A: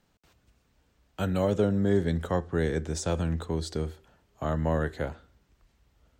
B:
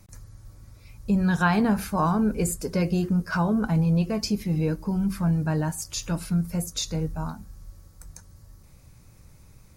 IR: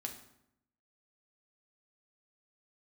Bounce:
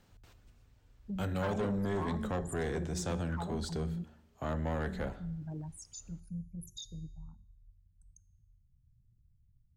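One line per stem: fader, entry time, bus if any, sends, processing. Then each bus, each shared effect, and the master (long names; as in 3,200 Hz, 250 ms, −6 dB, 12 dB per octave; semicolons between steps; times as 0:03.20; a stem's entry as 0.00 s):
+2.0 dB, 0.00 s, send −12 dB, automatic ducking −9 dB, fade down 0.80 s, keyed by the second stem
−8.5 dB, 0.00 s, muted 0:04.04–0:04.78, send −18.5 dB, spectral envelope exaggerated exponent 3; tuned comb filter 120 Hz, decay 0.93 s, harmonics odd, mix 60%; every ending faded ahead of time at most 350 dB per second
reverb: on, RT60 0.75 s, pre-delay 4 ms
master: soft clipping −28.5 dBFS, distortion −10 dB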